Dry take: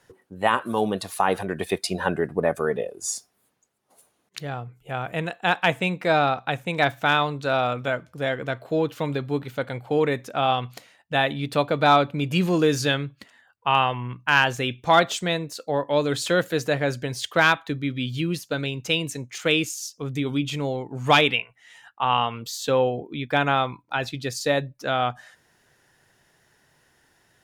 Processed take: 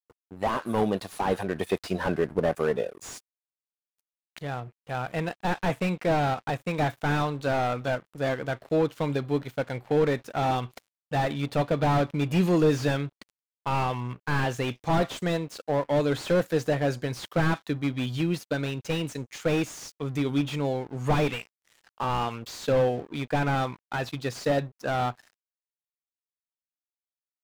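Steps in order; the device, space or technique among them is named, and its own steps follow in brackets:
early transistor amplifier (dead-zone distortion −45.5 dBFS; slew-rate limiting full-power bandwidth 62 Hz)

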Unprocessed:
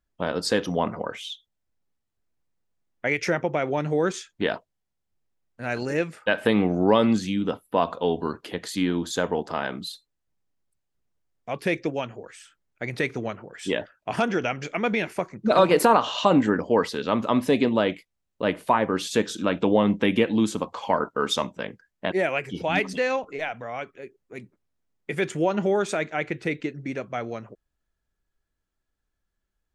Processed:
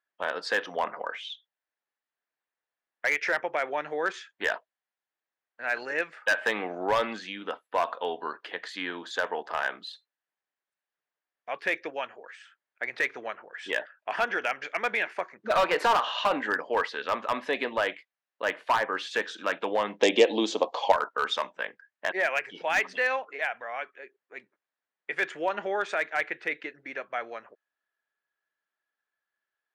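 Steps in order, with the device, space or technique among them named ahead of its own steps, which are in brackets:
megaphone (band-pass filter 690–3,300 Hz; parametric band 1,700 Hz +6.5 dB 0.33 octaves; hard clipping −18 dBFS, distortion −13 dB)
0:20.01–0:20.92: drawn EQ curve 120 Hz 0 dB, 350 Hz +12 dB, 710 Hz +11 dB, 1,500 Hz −8 dB, 3,500 Hz +10 dB, 6,700 Hz +12 dB, 11,000 Hz −5 dB

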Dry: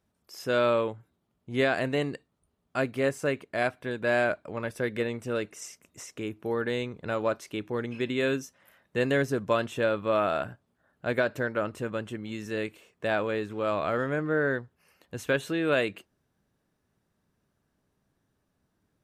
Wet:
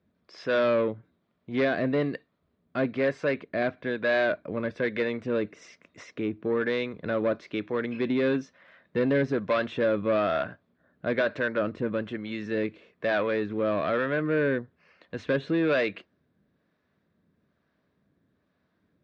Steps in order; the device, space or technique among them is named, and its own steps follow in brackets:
guitar amplifier with harmonic tremolo (two-band tremolo in antiphase 1.1 Hz, depth 50%, crossover 510 Hz; soft clipping −25.5 dBFS, distortion −12 dB; loudspeaker in its box 94–3,800 Hz, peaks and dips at 120 Hz −7 dB, 390 Hz −3 dB, 840 Hz −9 dB, 1,300 Hz −3 dB, 2,900 Hz −7 dB)
level +8.5 dB

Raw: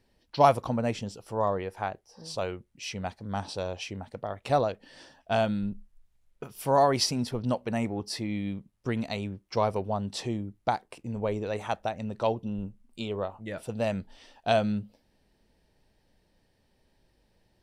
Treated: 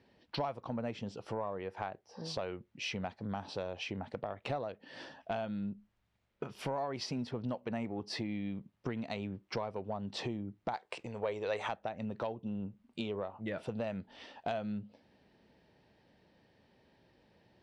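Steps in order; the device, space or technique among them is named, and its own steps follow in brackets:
AM radio (band-pass filter 110–3,600 Hz; downward compressor 6 to 1, threshold −39 dBFS, peak gain reduction 22.5 dB; soft clipping −27.5 dBFS, distortion −24 dB)
0:10.73–0:11.69: octave-band graphic EQ 125/250/500/1,000/2,000/4,000/8,000 Hz −4/−9/+5/+3/+5/+6/+11 dB
level +4.5 dB

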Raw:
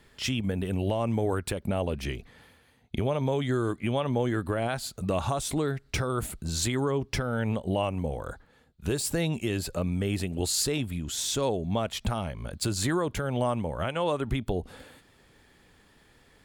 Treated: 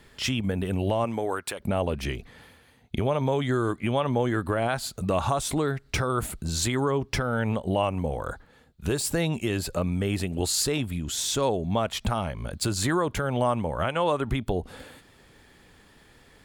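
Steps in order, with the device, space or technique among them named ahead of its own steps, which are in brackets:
parallel compression (in parallel at −4 dB: downward compressor, threshold −36 dBFS, peak gain reduction 13 dB)
on the sum: dynamic equaliser 1,100 Hz, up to +4 dB, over −39 dBFS, Q 0.91
0:01.04–0:01.59: high-pass filter 250 Hz → 1,000 Hz 6 dB per octave

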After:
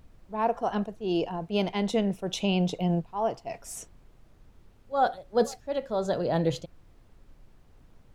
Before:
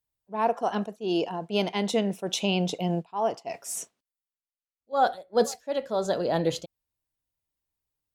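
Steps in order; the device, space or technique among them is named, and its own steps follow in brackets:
car interior (parametric band 130 Hz +8.5 dB 0.77 octaves; high-shelf EQ 4,300 Hz −6 dB; brown noise bed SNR 23 dB)
level −1.5 dB

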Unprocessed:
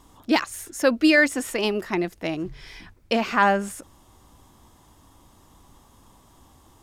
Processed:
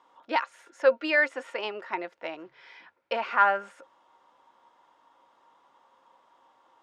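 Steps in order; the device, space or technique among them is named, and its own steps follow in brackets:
tin-can telephone (band-pass filter 640–2,600 Hz; hollow resonant body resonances 530/930/1,400 Hz, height 11 dB, ringing for 90 ms)
level −3.5 dB

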